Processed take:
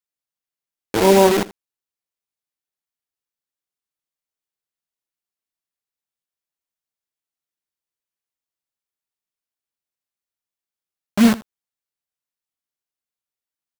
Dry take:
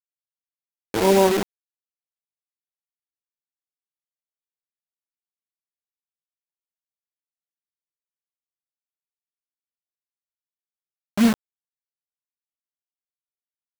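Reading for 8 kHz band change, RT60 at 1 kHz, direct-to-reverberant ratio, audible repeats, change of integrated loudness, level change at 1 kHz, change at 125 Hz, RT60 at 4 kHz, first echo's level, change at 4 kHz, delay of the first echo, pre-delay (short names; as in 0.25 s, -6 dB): +4.0 dB, none, none, 1, +4.0 dB, +4.0 dB, +4.0 dB, none, -19.5 dB, +4.0 dB, 81 ms, none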